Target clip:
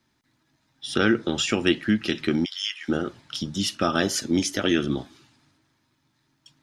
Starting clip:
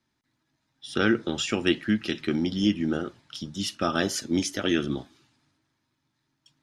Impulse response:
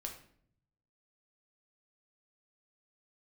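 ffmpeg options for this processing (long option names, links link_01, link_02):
-filter_complex "[0:a]asplit=3[link_01][link_02][link_03];[link_01]afade=type=out:start_time=2.44:duration=0.02[link_04];[link_02]highpass=frequency=1300:width=0.5412,highpass=frequency=1300:width=1.3066,afade=type=in:start_time=2.44:duration=0.02,afade=type=out:start_time=2.88:duration=0.02[link_05];[link_03]afade=type=in:start_time=2.88:duration=0.02[link_06];[link_04][link_05][link_06]amix=inputs=3:normalize=0,asplit=2[link_07][link_08];[link_08]acompressor=threshold=-32dB:ratio=6,volume=1.5dB[link_09];[link_07][link_09]amix=inputs=2:normalize=0"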